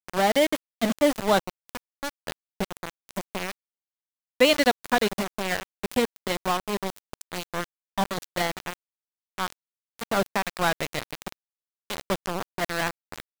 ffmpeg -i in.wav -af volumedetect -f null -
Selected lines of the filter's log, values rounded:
mean_volume: -28.4 dB
max_volume: -6.4 dB